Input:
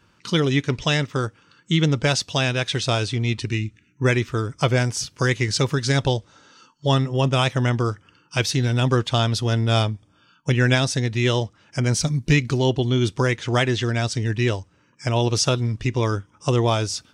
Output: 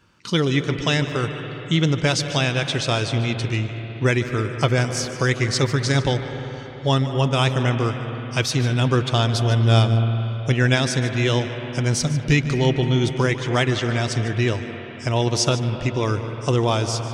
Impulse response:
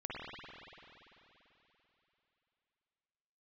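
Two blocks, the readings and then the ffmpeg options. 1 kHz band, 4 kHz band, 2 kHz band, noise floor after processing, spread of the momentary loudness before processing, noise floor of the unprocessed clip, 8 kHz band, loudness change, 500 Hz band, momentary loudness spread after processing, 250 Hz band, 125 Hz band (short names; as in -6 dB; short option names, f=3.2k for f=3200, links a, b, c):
+1.0 dB, +0.5 dB, +1.0 dB, -34 dBFS, 7 LU, -60 dBFS, 0.0 dB, +1.0 dB, +0.5 dB, 6 LU, +1.0 dB, +1.5 dB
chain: -filter_complex "[0:a]asplit=2[a][b];[1:a]atrim=start_sample=2205,asetrate=40572,aresample=44100,adelay=149[c];[b][c]afir=irnorm=-1:irlink=0,volume=-10dB[d];[a][d]amix=inputs=2:normalize=0"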